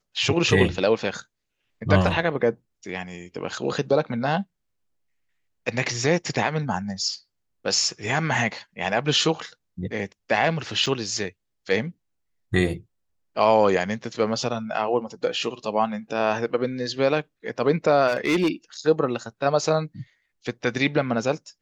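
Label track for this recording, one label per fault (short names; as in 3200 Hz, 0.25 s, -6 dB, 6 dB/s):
10.860000	10.870000	gap 5.1 ms
18.070000	18.480000	clipped -16.5 dBFS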